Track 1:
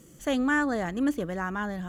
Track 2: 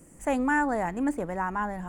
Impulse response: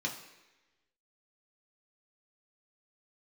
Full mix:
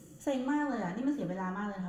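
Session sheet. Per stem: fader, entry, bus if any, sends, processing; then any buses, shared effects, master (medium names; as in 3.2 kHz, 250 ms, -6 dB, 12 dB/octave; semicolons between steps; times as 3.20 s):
0.0 dB, 0.00 s, send -10.5 dB, high-pass 73 Hz; auto duck -16 dB, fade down 0.75 s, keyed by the second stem
-14.5 dB, 0.00 s, no send, elliptic low-pass 1.6 kHz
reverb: on, RT60 1.1 s, pre-delay 3 ms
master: compression 2:1, threshold -29 dBFS, peak gain reduction 3.5 dB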